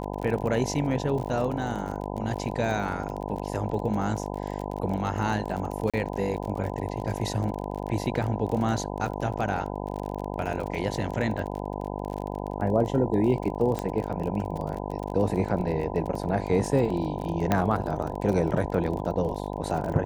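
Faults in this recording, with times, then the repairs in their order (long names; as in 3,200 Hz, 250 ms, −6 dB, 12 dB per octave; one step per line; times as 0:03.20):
mains buzz 50 Hz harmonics 20 −33 dBFS
surface crackle 35 per second −32 dBFS
0:05.90–0:05.94: drop-out 36 ms
0:13.79: click −16 dBFS
0:17.52: click −9 dBFS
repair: click removal
hum removal 50 Hz, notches 20
repair the gap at 0:05.90, 36 ms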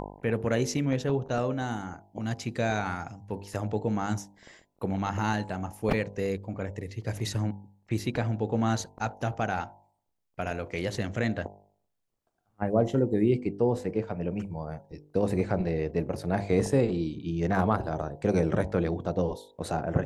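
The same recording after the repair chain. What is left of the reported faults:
none of them is left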